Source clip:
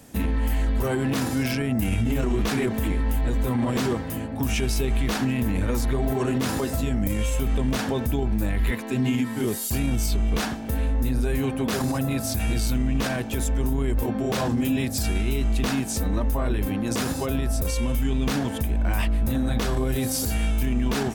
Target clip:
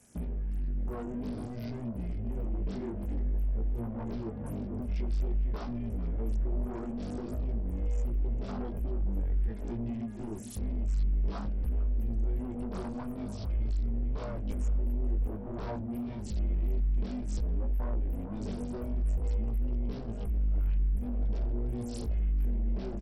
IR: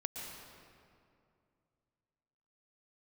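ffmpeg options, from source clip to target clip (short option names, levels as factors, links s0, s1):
-filter_complex "[0:a]afwtdn=0.0501,aemphasis=mode=production:type=cd,aecho=1:1:414|828|1242:0.211|0.055|0.0143,acrossover=split=5700[s0][s1];[s1]alimiter=level_in=2.82:limit=0.0631:level=0:latency=1:release=299,volume=0.355[s2];[s0][s2]amix=inputs=2:normalize=0,acompressor=threshold=0.0251:ratio=10,asoftclip=type=tanh:threshold=0.02,asubboost=boost=2.5:cutoff=72,flanger=delay=15.5:depth=3.9:speed=0.55,asetrate=40517,aresample=44100,volume=1.78" -ar 44100 -c:a sbc -b:a 64k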